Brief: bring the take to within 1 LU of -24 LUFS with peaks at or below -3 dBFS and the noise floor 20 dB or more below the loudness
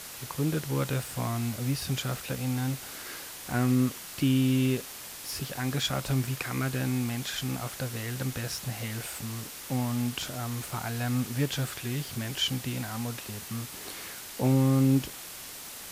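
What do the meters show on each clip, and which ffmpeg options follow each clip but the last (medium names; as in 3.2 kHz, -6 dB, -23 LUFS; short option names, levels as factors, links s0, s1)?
noise floor -43 dBFS; noise floor target -51 dBFS; loudness -30.5 LUFS; peak level -13.5 dBFS; loudness target -24.0 LUFS
-> -af "afftdn=nr=8:nf=-43"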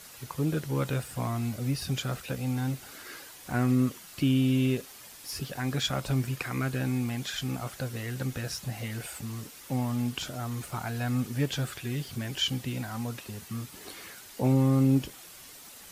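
noise floor -49 dBFS; noise floor target -51 dBFS
-> -af "afftdn=nr=6:nf=-49"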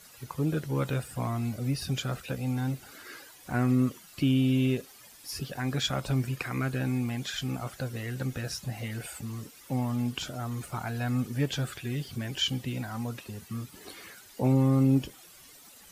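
noise floor -53 dBFS; loudness -30.5 LUFS; peak level -14.0 dBFS; loudness target -24.0 LUFS
-> -af "volume=2.11"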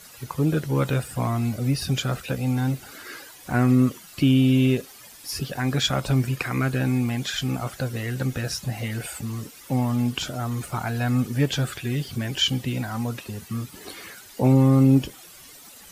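loudness -24.0 LUFS; peak level -7.5 dBFS; noise floor -46 dBFS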